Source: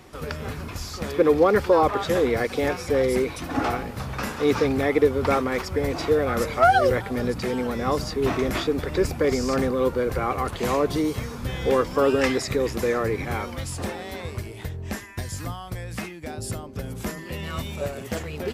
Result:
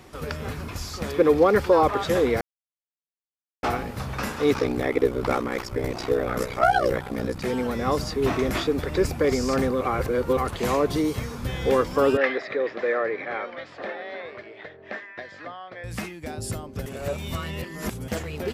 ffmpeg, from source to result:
-filter_complex "[0:a]asettb=1/sr,asplit=3[a][b][c];[a]atrim=end=4.534[d];[b]atrim=start=4.53:end=7.45,asetpts=PTS-STARTPTS,afade=t=in:d=0.004:c=qsin,afade=t=out:st=2.916:d=0.004:c=qsin,aeval=exprs='val(0)*sin(2*PI*31*n/s)':c=same[e];[c]atrim=start=7.446[f];[d][e]acrossfade=d=0.004:c1=hsin:c2=qsin[g];[g][f]acrossfade=d=0.004:c1=qsin:c2=hsin,asettb=1/sr,asplit=3[h][i][j];[h]atrim=end=12.174[k];[i]atrim=start=12.17:end=15.84,asetpts=PTS-STARTPTS,afade=t=in:d=0.004:c=qsin,afade=t=out:st=3.666:d=0.004:c=qsin,highpass=440,equalizer=f=600:t=q:w=4:g=6,equalizer=f=930:t=q:w=4:g=-6,equalizer=f=1.8k:t=q:w=4:g=5,equalizer=f=2.8k:t=q:w=4:g=-6,lowpass=f=3.4k:w=0.5412,lowpass=f=3.4k:w=1.3066[l];[j]atrim=start=15.836[m];[k][l]acrossfade=d=0.004:c1=hsin:c2=qsin[n];[n][m]acrossfade=d=0.004:c1=qsin:c2=hsin,asplit=7[o][p][q][r][s][t][u];[o]atrim=end=2.41,asetpts=PTS-STARTPTS,afade=t=out:st=2.406:d=0.004:c=hsin[v];[p]atrim=start=2.41:end=3.63,asetpts=PTS-STARTPTS,volume=0[w];[q]atrim=start=3.63:end=9.812,asetpts=PTS-STARTPTS,afade=t=in:d=0.004:c=hsin[x];[r]atrim=start=9.808:end=10.372,asetpts=PTS-STARTPTS,areverse[y];[s]atrim=start=10.368:end=16.862[z];[t]atrim=start=16.858:end=18.082,asetpts=PTS-STARTPTS,areverse[aa];[u]atrim=start=18.078[ab];[v][w][x]concat=n=3:v=0:a=1[ac];[ac][y]acrossfade=d=0.004:c1=hsin:c2=hsin[ad];[ad][z]acrossfade=d=0.004:c1=hsin:c2=hsin[ae];[ae][aa]acrossfade=d=0.004:c1=hsin:c2=hsin[af];[af][ab]acrossfade=d=0.004:c1=hsin:c2=hsin"

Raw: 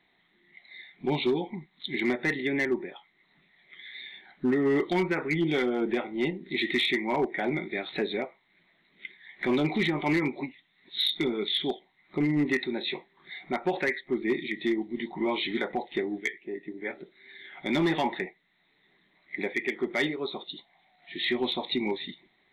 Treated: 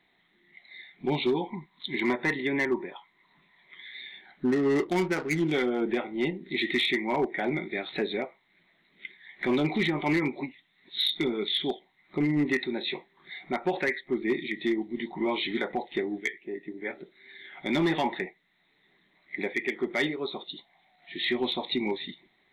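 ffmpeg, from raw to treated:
-filter_complex "[0:a]asettb=1/sr,asplit=3[a][b][c];[a]atrim=end=1.344[d];[b]atrim=start=1.34:end=3.85,asetpts=PTS-STARTPTS,afade=t=in:d=0.004:c=qsin,afade=t=out:st=2.506:d=0.004:c=qsin,equalizer=f=1k:t=o:w=0.26:g=14[e];[c]atrim=start=3.846[f];[d][e]acrossfade=d=0.004:c1=hsin:c2=qsin[g];[g][f]acrossfade=d=0.004:c1=qsin:c2=hsin,asettb=1/sr,asplit=3[h][i][j];[h]atrim=end=4.474[k];[i]atrim=start=4.47:end=5.52,asetpts=PTS-STARTPTS,afade=t=in:d=0.004:c=qsin,afade=t=out:st=1.046:d=0.004:c=qsin,adynamicsmooth=sensitivity=5.5:basefreq=650[l];[j]atrim=start=5.516[m];[k][l]acrossfade=d=0.004:c1=hsin:c2=qsin[n];[n][m]acrossfade=d=0.004:c1=qsin:c2=hsin"

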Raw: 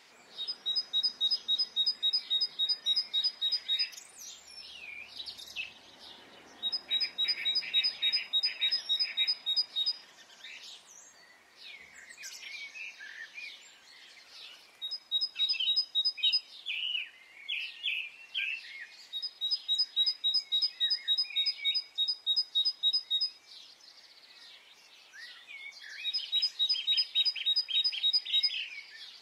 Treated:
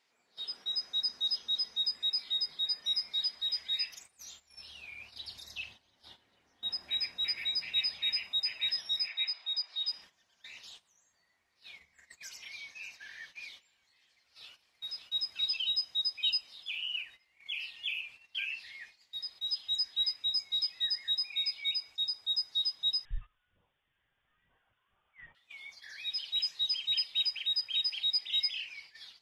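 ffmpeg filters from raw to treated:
-filter_complex "[0:a]asettb=1/sr,asplit=3[a][b][c];[a]atrim=end=9.084[d];[b]atrim=start=9.08:end=9.88,asetpts=PTS-STARTPTS,afade=t=in:d=0.004:c=qsin,afade=t=out:st=0.796:d=0.004:c=qsin,highpass=650,lowpass=5.4k[e];[c]atrim=start=9.876[f];[d][e]acrossfade=d=0.004:c1=hsin:c2=qsin[g];[g][f]acrossfade=d=0.004:c1=qsin:c2=hsin,asplit=2[h][i];[i]afade=t=in:st=12.22:d=0.01,afade=t=out:st=12.87:d=0.01,aecho=0:1:590|1180|1770|2360|2950:0.223872|0.111936|0.055968|0.027984|0.013992[j];[h][j]amix=inputs=2:normalize=0,asplit=2[k][l];[l]afade=t=in:st=14.05:d=0.01,afade=t=out:st=15:d=0.01,aecho=0:1:570|1140|1710|2280|2850|3420:0.595662|0.297831|0.148916|0.0744578|0.0372289|0.0186144[m];[k][m]amix=inputs=2:normalize=0,asettb=1/sr,asplit=3[n][o][p];[n]atrim=end=23.054[q];[o]atrim=start=23.05:end=25.35,asetpts=PTS-STARTPTS,afade=t=in:d=0.004:c=qsin,afade=t=out:st=2.296:d=0.004:c=qsin,lowpass=f=3.2k:t=q:w=0.5098,lowpass=f=3.2k:t=q:w=0.6013,lowpass=f=3.2k:t=q:w=0.9,lowpass=f=3.2k:t=q:w=2.563,afreqshift=-3800[r];[p]atrim=start=25.346[s];[q][r]acrossfade=d=0.004:c1=hsin:c2=qsin[t];[t][s]acrossfade=d=0.004:c1=qsin:c2=hsin,agate=range=-14dB:threshold=-49dB:ratio=16:detection=peak,asubboost=boost=3.5:cutoff=150,volume=-2.5dB"

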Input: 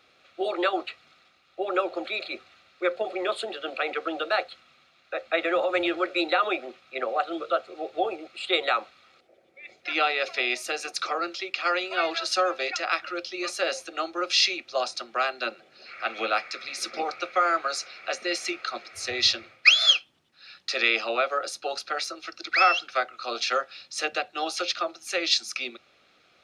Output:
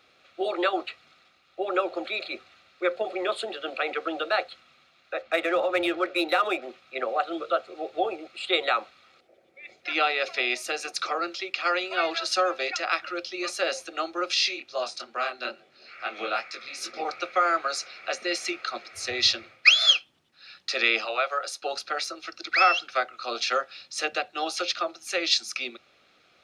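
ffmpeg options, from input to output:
-filter_complex "[0:a]asettb=1/sr,asplit=3[a][b][c];[a]atrim=end=5.224[d];[b]atrim=start=5.22:end=6.62,asetpts=PTS-STARTPTS,afade=t=in:d=0.004:c=qsin,afade=t=out:st=1.396:d=0.004:c=qsin,adynamicsmooth=sensitivity=7:basefreq=5.2k[e];[c]atrim=start=6.616[f];[d][e]acrossfade=d=0.004:c1=hsin:c2=qsin[g];[g][f]acrossfade=d=0.004:c1=qsin:c2=hsin,asettb=1/sr,asplit=3[h][i][j];[h]atrim=end=14.344[k];[i]atrim=start=14.34:end=17.05,asetpts=PTS-STARTPTS,afade=t=in:d=0.004:c=qsin,afade=t=out:st=2.706:d=0.004:c=qsin,flanger=delay=20:depth=4.9:speed=2.3[l];[j]atrim=start=17.046[m];[k][l]acrossfade=d=0.004:c1=hsin:c2=qsin[n];[n][m]acrossfade=d=0.004:c1=qsin:c2=hsin,asettb=1/sr,asplit=3[o][p][q];[o]atrim=end=21.054[r];[p]atrim=start=21.05:end=21.62,asetpts=PTS-STARTPTS,afade=t=in:d=0.004:c=qsin,afade=t=out:st=0.566:d=0.004:c=qsin,highpass=590[s];[q]atrim=start=21.616[t];[r][s]acrossfade=d=0.004:c1=hsin:c2=qsin[u];[u][t]acrossfade=d=0.004:c1=qsin:c2=hsin"

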